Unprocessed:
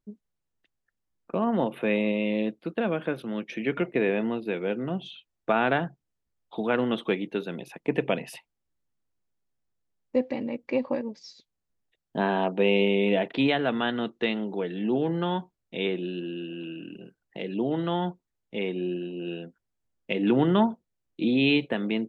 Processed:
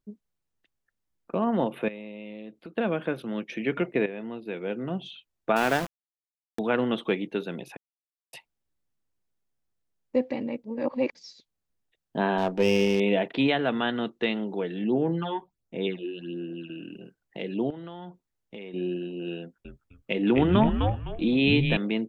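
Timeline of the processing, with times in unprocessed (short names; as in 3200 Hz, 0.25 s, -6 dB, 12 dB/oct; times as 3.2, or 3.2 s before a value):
1.88–2.78 compressor 5:1, threshold -38 dBFS
4.06–5.05 fade in, from -13 dB
5.56–6.59 sample gate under -28.5 dBFS
7.77–8.33 mute
10.64–11.15 reverse
12.38–13 running maximum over 5 samples
14.84–16.7 phaser stages 8, 1.4 Hz, lowest notch 170–4200 Hz
17.7–18.74 compressor 12:1, threshold -36 dBFS
19.39–21.77 frequency-shifting echo 0.256 s, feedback 31%, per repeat -120 Hz, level -3.5 dB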